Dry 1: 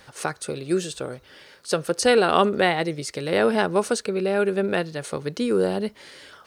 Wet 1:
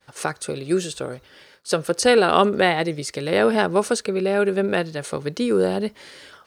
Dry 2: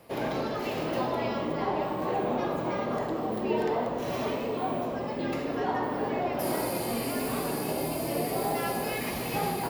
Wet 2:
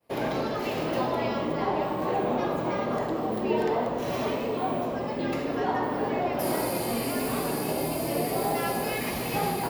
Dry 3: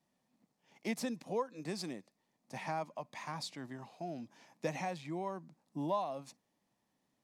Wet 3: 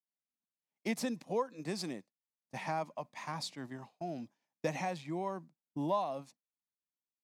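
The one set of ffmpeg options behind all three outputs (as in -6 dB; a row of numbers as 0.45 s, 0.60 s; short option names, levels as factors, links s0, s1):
-af "agate=range=0.0224:threshold=0.00631:ratio=3:detection=peak,volume=1.26"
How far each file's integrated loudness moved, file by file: +2.0 LU, +2.0 LU, +2.0 LU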